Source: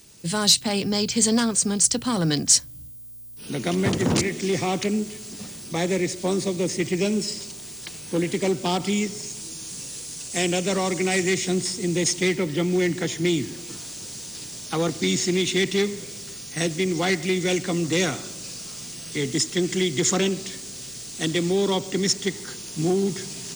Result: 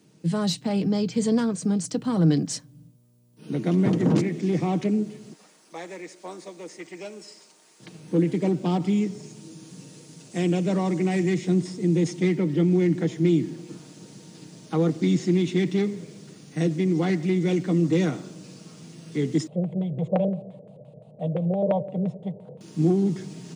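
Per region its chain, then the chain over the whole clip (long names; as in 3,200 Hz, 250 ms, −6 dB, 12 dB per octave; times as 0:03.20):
0:05.33–0:07.80: high-pass filter 820 Hz + parametric band 3,300 Hz −4 dB 1.2 octaves
0:19.47–0:22.61: drawn EQ curve 140 Hz 0 dB, 220 Hz −6 dB, 330 Hz −24 dB, 590 Hz +13 dB, 1,000 Hz −6 dB, 1,700 Hz −29 dB, 3,700 Hz −14 dB, 5,600 Hz −23 dB, 9,200 Hz +3 dB + auto-filter low-pass square 5.8 Hz 480–2,600 Hz
whole clip: high-pass filter 160 Hz 24 dB per octave; spectral tilt −4 dB per octave; comb filter 6.4 ms, depth 37%; level −5.5 dB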